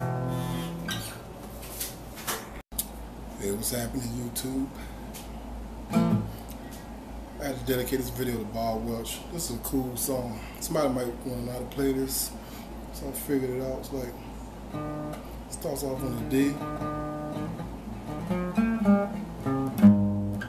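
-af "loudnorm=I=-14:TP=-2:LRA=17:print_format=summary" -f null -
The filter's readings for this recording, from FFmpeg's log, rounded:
Input Integrated:    -28.9 LUFS
Input True Peak:      -6.7 dBTP
Input LRA:             7.6 LU
Input Threshold:     -39.5 LUFS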